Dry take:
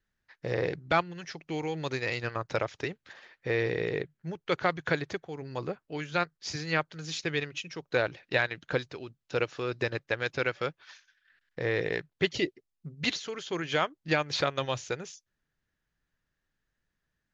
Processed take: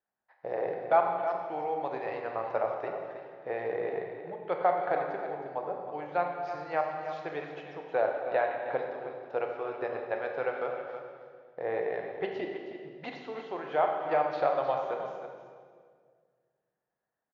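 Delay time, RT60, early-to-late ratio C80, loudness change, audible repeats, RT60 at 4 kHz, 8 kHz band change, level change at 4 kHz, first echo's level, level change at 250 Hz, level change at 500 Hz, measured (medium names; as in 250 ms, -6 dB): 317 ms, 1.9 s, 4.0 dB, -1.0 dB, 1, 1.5 s, no reading, -17.0 dB, -10.5 dB, -7.0 dB, +1.5 dB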